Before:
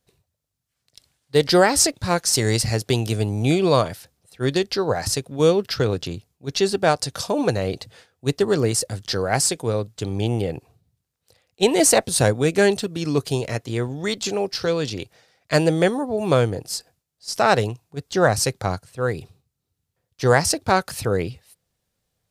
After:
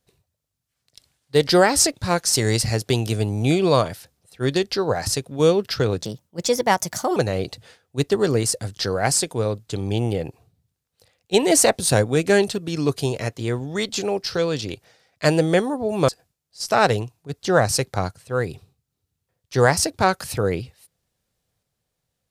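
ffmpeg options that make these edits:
-filter_complex "[0:a]asplit=4[a][b][c][d];[a]atrim=end=6.024[e];[b]atrim=start=6.02:end=7.45,asetpts=PTS-STARTPTS,asetrate=55125,aresample=44100,atrim=end_sample=50450,asetpts=PTS-STARTPTS[f];[c]atrim=start=7.446:end=16.372[g];[d]atrim=start=16.758[h];[e][f]acrossfade=d=0.004:c1=hsin:c2=hsin[i];[i][g]acrossfade=d=0.004:c1=hsin:c2=hsin[j];[j][h]acrossfade=d=0.004:c1=hsin:c2=hsin"

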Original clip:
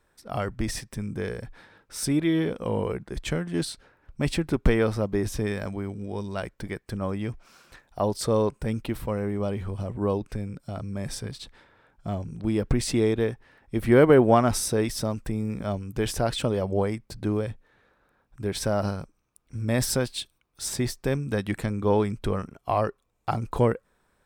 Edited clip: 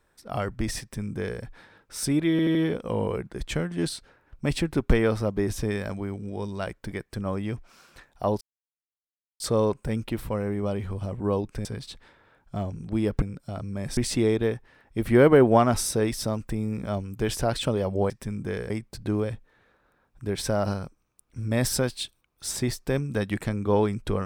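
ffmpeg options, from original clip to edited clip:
-filter_complex "[0:a]asplit=10[a][b][c][d][e][f][g][h][i][j];[a]atrim=end=2.392[k];[b]atrim=start=2.308:end=2.392[l];[c]atrim=start=2.308:end=2.392[m];[d]atrim=start=2.308:end=8.17,asetpts=PTS-STARTPTS,afade=t=out:st=5.858:d=0.004:c=hsin,apad=pad_dur=0.99[n];[e]atrim=start=8.17:end=10.422,asetpts=PTS-STARTPTS,afade=t=in:d=0.004:c=hsin[o];[f]atrim=start=11.168:end=12.742[p];[g]atrim=start=10.418:end=11.172[q];[h]atrim=start=12.738:end=16.872[r];[i]atrim=start=0.808:end=1.412[s];[j]atrim=start=16.868[t];[k][l]acrossfade=d=0.004:c1=hsin:c2=hsin[u];[u][m]acrossfade=d=0.004:c1=hsin:c2=hsin[v];[n][o]concat=n=2:v=0:a=1[w];[v][w]acrossfade=d=0.004:c1=hsin:c2=hsin[x];[x][p]acrossfade=d=0.004:c1=hsin:c2=hsin[y];[y][q]acrossfade=d=0.004:c1=hsin:c2=hsin[z];[z][r]acrossfade=d=0.004:c1=hsin:c2=hsin[aa];[aa][s]acrossfade=d=0.004:c1=hsin:c2=hsin[ab];[ab][t]acrossfade=d=0.004:c1=hsin:c2=hsin"

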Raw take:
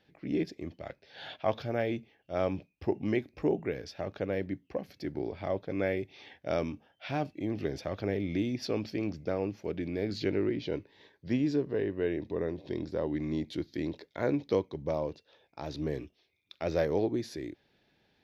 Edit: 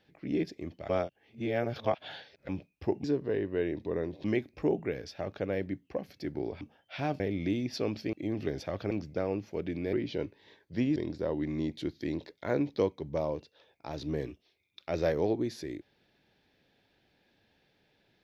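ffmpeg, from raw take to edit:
-filter_complex "[0:a]asplit=11[a][b][c][d][e][f][g][h][i][j][k];[a]atrim=end=0.892[l];[b]atrim=start=0.888:end=2.492,asetpts=PTS-STARTPTS,areverse[m];[c]atrim=start=2.488:end=3.042[n];[d]atrim=start=11.488:end=12.692[o];[e]atrim=start=3.038:end=5.412[p];[f]atrim=start=6.718:end=7.312[q];[g]atrim=start=8.088:end=9.022[r];[h]atrim=start=7.308:end=8.092[s];[i]atrim=start=9.018:end=10.042[t];[j]atrim=start=10.458:end=11.492[u];[k]atrim=start=12.688[v];[l][m]acrossfade=d=0.004:c1=hsin:c2=hsin[w];[w][n]acrossfade=d=0.004:c1=hsin:c2=hsin[x];[x][o]acrossfade=d=0.004:c1=hsin:c2=hsin[y];[y][p]acrossfade=d=0.004:c1=hsin:c2=hsin[z];[z][q]acrossfade=d=0.004:c1=hsin:c2=hsin[aa];[aa][r]acrossfade=d=0.004:c1=hsin:c2=hsin[ab];[ab][s]acrossfade=d=0.004:c1=hsin:c2=hsin[ac];[ac][t]acrossfade=d=0.004:c1=hsin:c2=hsin[ad];[ad][u]acrossfade=d=0.004:c1=hsin:c2=hsin[ae];[ae][v]acrossfade=d=0.004:c1=hsin:c2=hsin"

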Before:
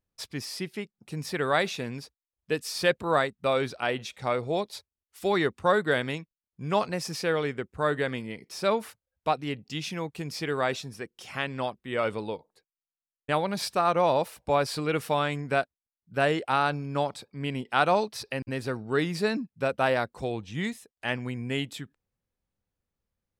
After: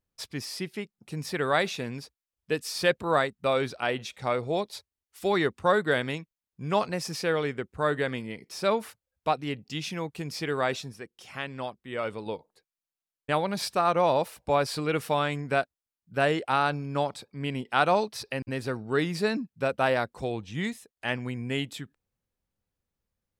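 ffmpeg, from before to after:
-filter_complex "[0:a]asplit=3[a][b][c];[a]atrim=end=10.922[d];[b]atrim=start=10.918:end=12.262,asetpts=PTS-STARTPTS,volume=-4dB[e];[c]atrim=start=12.258[f];[d][e]acrossfade=d=0.004:c1=hsin:c2=hsin[g];[g][f]acrossfade=d=0.004:c1=hsin:c2=hsin"

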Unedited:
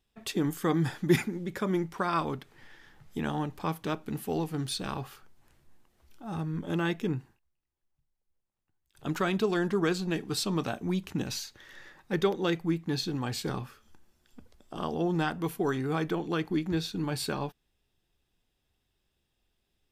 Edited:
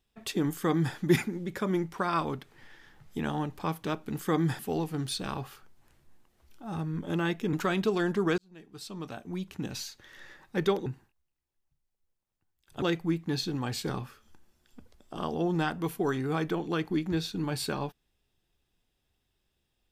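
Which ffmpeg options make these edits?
-filter_complex "[0:a]asplit=7[a][b][c][d][e][f][g];[a]atrim=end=4.192[h];[b]atrim=start=0.548:end=0.952[i];[c]atrim=start=4.188:end=7.132[j];[d]atrim=start=9.088:end=9.94,asetpts=PTS-STARTPTS,afade=t=out:st=0.848:d=0.004:c=hsin[k];[e]atrim=start=9.94:end=12.422,asetpts=PTS-STARTPTS,afade=t=in:d=1.86[l];[f]atrim=start=7.128:end=9.092[m];[g]atrim=start=12.418[n];[h][i]acrossfade=d=0.004:c1=hsin:c2=hsin[o];[o][j]acrossfade=d=0.004:c1=hsin:c2=hsin[p];[k][l]concat=n=2:v=0:a=1[q];[p][q]acrossfade=d=0.004:c1=hsin:c2=hsin[r];[r][m]acrossfade=d=0.004:c1=hsin:c2=hsin[s];[s][n]acrossfade=d=0.004:c1=hsin:c2=hsin"

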